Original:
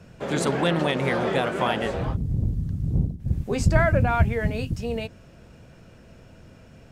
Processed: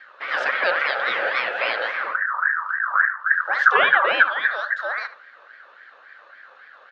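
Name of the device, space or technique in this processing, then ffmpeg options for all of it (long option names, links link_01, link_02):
voice changer toy: -filter_complex "[0:a]aeval=exprs='val(0)*sin(2*PI*1400*n/s+1400*0.25/3.6*sin(2*PI*3.6*n/s))':channel_layout=same,highpass=500,equalizer=frequency=540:width_type=q:width=4:gain=10,equalizer=frequency=960:width_type=q:width=4:gain=-8,equalizer=frequency=1600:width_type=q:width=4:gain=5,lowpass=frequency=4300:width=0.5412,lowpass=frequency=4300:width=1.3066,asettb=1/sr,asplit=3[link_01][link_02][link_03];[link_01]atrim=end=2.934[link_04];[link_02]atrim=start=2.93:end=4.13,asetpts=PTS-STARTPTS,afade=type=in:duration=0.004:curve=qsin,afade=type=out:start_time=1.196:duration=0.004:curve=qsin,equalizer=frequency=710:width_type=o:width=2.3:gain=3[link_05];[link_03]atrim=start=4.126[link_06];[link_04][link_05]acrossfade=duration=0.004:curve1=hsin:curve2=qsin[link_07];[link_07][link_06]acrossfade=duration=0.004:curve1=qsin:curve2=hsin,asplit=2[link_08][link_09];[link_09]adelay=75,lowpass=frequency=2300:poles=1,volume=-12dB,asplit=2[link_10][link_11];[link_11]adelay=75,lowpass=frequency=2300:poles=1,volume=0.22,asplit=2[link_12][link_13];[link_13]adelay=75,lowpass=frequency=2300:poles=1,volume=0.22[link_14];[link_08][link_10][link_12][link_14]amix=inputs=4:normalize=0,volume=2.5dB"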